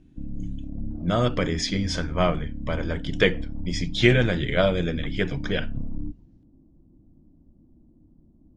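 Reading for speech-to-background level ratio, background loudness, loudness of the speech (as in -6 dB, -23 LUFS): 10.5 dB, -35.5 LUFS, -25.0 LUFS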